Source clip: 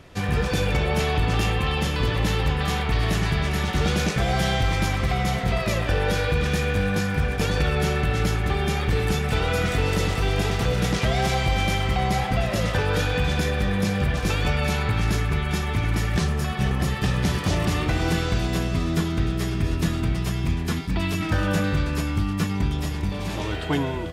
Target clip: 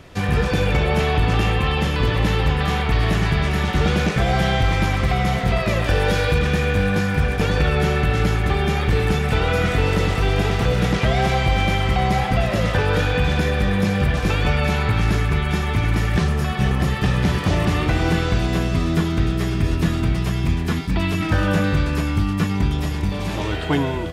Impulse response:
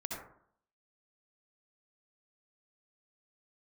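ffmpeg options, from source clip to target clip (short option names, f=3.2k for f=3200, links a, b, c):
-filter_complex "[0:a]asettb=1/sr,asplit=3[a][b][c];[a]atrim=end=5.844[d];[b]atrim=start=5.84:end=6.39,asetpts=PTS-STARTPTS,afade=t=in:d=0.004:c=qsin,afade=t=out:st=0.546:d=0.004:c=qsin,bass=f=250:g=0,treble=f=4k:g=10[e];[c]atrim=start=6.386[f];[d][e]acrossfade=d=0.004:c1=hsin:c2=qsin[g];[g][f]acrossfade=d=0.004:c1=qsin:c2=hsin,acrossover=split=3500[h][i];[i]acompressor=threshold=-41dB:ratio=4:attack=1:release=60[j];[h][j]amix=inputs=2:normalize=0,volume=4dB"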